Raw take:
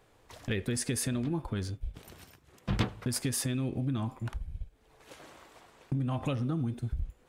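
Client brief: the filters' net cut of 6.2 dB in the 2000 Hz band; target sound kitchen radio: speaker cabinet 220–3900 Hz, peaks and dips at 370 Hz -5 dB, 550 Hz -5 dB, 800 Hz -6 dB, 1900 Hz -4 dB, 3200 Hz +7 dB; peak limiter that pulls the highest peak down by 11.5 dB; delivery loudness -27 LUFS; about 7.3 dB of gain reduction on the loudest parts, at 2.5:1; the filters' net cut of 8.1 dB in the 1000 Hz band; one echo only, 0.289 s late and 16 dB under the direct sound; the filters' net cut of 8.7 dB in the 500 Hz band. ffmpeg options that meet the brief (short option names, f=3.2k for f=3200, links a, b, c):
-af "equalizer=f=500:t=o:g=-4.5,equalizer=f=1k:t=o:g=-4,equalizer=f=2k:t=o:g=-5.5,acompressor=threshold=-35dB:ratio=2.5,alimiter=level_in=11.5dB:limit=-24dB:level=0:latency=1,volume=-11.5dB,highpass=220,equalizer=f=370:t=q:w=4:g=-5,equalizer=f=550:t=q:w=4:g=-5,equalizer=f=800:t=q:w=4:g=-6,equalizer=f=1.9k:t=q:w=4:g=-4,equalizer=f=3.2k:t=q:w=4:g=7,lowpass=f=3.9k:w=0.5412,lowpass=f=3.9k:w=1.3066,aecho=1:1:289:0.158,volume=24.5dB"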